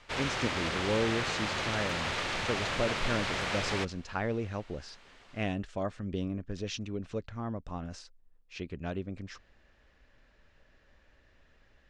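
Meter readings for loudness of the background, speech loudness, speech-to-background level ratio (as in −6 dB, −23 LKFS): −32.5 LKFS, −36.5 LKFS, −4.0 dB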